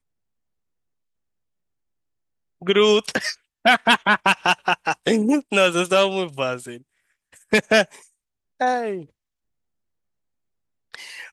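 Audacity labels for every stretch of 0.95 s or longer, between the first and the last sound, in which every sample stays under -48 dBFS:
9.060000	10.940000	silence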